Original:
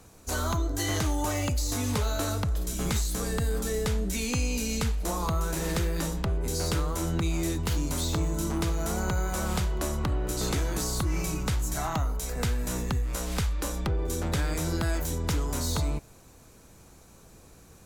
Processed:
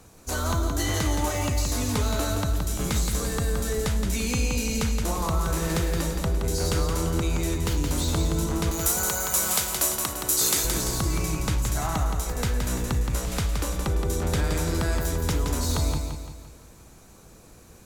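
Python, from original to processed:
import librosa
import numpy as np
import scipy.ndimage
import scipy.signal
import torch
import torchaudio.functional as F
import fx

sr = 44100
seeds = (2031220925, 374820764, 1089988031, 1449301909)

p1 = fx.riaa(x, sr, side='recording', at=(8.71, 10.65))
p2 = p1 + fx.echo_feedback(p1, sr, ms=171, feedback_pct=46, wet_db=-5.5, dry=0)
y = p2 * 10.0 ** (1.5 / 20.0)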